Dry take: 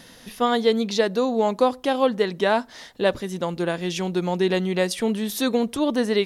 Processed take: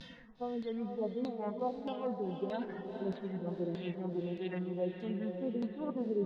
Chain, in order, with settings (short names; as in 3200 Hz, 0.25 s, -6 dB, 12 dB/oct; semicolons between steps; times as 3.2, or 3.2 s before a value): median-filter separation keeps harmonic; low shelf 170 Hz +10 dB; reverse; compressor 12:1, threshold -31 dBFS, peak gain reduction 19.5 dB; reverse; vibrato 0.38 Hz 28 cents; LFO low-pass saw down 1.6 Hz 290–4500 Hz; on a send: diffused feedback echo 0.469 s, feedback 50%, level -6 dB; on the sum: gain -5 dB